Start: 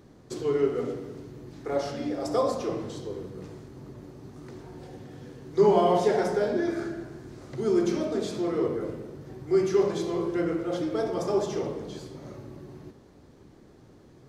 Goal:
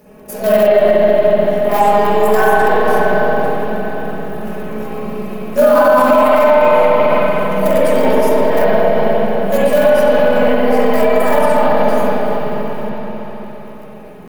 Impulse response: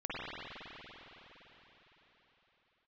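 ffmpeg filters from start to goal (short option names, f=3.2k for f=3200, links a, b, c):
-filter_complex "[0:a]bandreject=f=2.3k:w=16,aecho=1:1:6.9:0.98,bandreject=f=234.8:t=h:w=4,bandreject=f=469.6:t=h:w=4,bandreject=f=704.4:t=h:w=4,bandreject=f=939.2:t=h:w=4,bandreject=f=1.174k:t=h:w=4,bandreject=f=1.4088k:t=h:w=4,bandreject=f=1.6436k:t=h:w=4,bandreject=f=1.8784k:t=h:w=4,bandreject=f=2.1132k:t=h:w=4,bandreject=f=2.348k:t=h:w=4,bandreject=f=2.5828k:t=h:w=4,bandreject=f=2.8176k:t=h:w=4,bandreject=f=3.0524k:t=h:w=4,bandreject=f=3.2872k:t=h:w=4,bandreject=f=3.522k:t=h:w=4,bandreject=f=3.7568k:t=h:w=4,bandreject=f=3.9916k:t=h:w=4,bandreject=f=4.2264k:t=h:w=4,bandreject=f=4.4612k:t=h:w=4,bandreject=f=4.696k:t=h:w=4,bandreject=f=4.9308k:t=h:w=4,bandreject=f=5.1656k:t=h:w=4,bandreject=f=5.4004k:t=h:w=4,bandreject=f=5.6352k:t=h:w=4,bandreject=f=5.87k:t=h:w=4,bandreject=f=6.1048k:t=h:w=4,bandreject=f=6.3396k:t=h:w=4,bandreject=f=6.5744k:t=h:w=4,bandreject=f=6.8092k:t=h:w=4,bandreject=f=7.044k:t=h:w=4,bandreject=f=7.2788k:t=h:w=4,bandreject=f=7.5136k:t=h:w=4,bandreject=f=7.7484k:t=h:w=4,bandreject=f=7.9832k:t=h:w=4,bandreject=f=8.218k:t=h:w=4,bandreject=f=8.4528k:t=h:w=4,asplit=2[a][b];[b]acrusher=bits=4:dc=4:mix=0:aa=0.000001,volume=-10dB[c];[a][c]amix=inputs=2:normalize=0,aexciter=amount=6.7:drive=2.1:freq=7.4k,asetrate=64194,aresample=44100,atempo=0.686977[d];[1:a]atrim=start_sample=2205[e];[d][e]afir=irnorm=-1:irlink=0,alimiter=level_in=9dB:limit=-1dB:release=50:level=0:latency=1,volume=-1dB"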